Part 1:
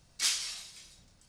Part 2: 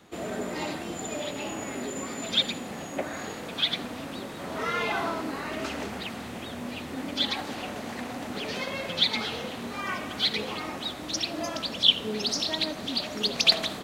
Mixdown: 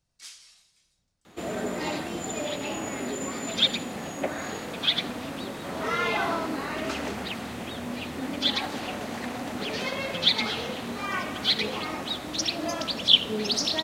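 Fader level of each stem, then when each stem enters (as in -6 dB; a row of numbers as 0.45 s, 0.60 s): -15.5 dB, +2.0 dB; 0.00 s, 1.25 s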